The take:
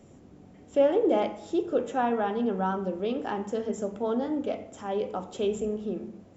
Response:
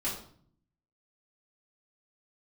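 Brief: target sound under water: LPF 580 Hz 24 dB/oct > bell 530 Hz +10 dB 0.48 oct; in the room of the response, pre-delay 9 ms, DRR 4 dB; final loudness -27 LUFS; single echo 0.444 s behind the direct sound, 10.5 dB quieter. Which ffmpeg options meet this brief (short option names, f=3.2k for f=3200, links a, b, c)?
-filter_complex "[0:a]aecho=1:1:444:0.299,asplit=2[a][b];[1:a]atrim=start_sample=2205,adelay=9[c];[b][c]afir=irnorm=-1:irlink=0,volume=-9dB[d];[a][d]amix=inputs=2:normalize=0,lowpass=f=580:w=0.5412,lowpass=f=580:w=1.3066,equalizer=f=530:t=o:w=0.48:g=10,volume=-4.5dB"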